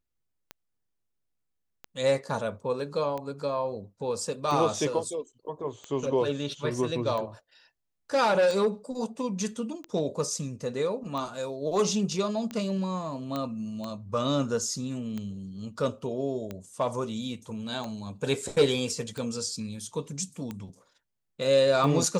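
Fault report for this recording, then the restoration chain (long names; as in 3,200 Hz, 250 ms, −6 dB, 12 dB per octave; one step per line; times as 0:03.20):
scratch tick 45 rpm −22 dBFS
0:13.36: click −18 dBFS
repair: click removal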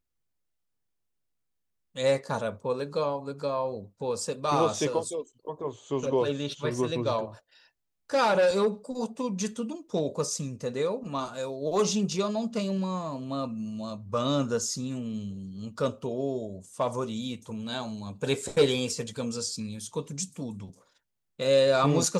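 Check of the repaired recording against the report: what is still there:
none of them is left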